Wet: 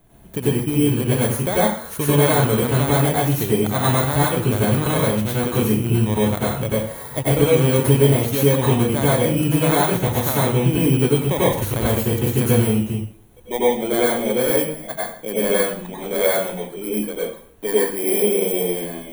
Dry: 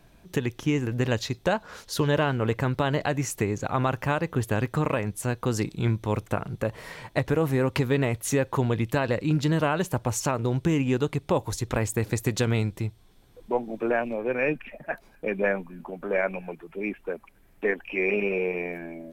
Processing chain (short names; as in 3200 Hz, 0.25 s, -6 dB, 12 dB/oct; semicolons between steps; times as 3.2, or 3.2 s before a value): FFT order left unsorted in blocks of 16 samples; bell 5000 Hz -13.5 dB 0.38 oct; plate-style reverb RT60 0.53 s, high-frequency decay 0.9×, pre-delay 80 ms, DRR -7.5 dB